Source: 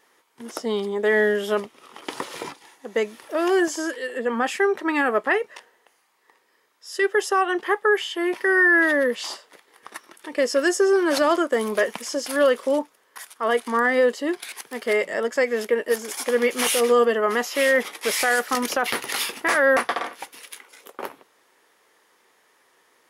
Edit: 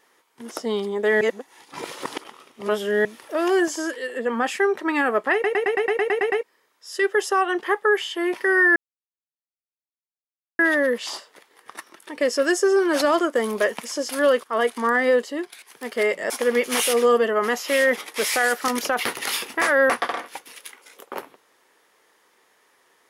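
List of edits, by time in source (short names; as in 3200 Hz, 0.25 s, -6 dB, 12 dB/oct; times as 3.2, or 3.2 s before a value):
1.21–3.05 reverse
5.33 stutter in place 0.11 s, 10 plays
8.76 insert silence 1.83 s
12.6–13.33 cut
14.05–14.61 fade out, to -14 dB
15.2–16.17 cut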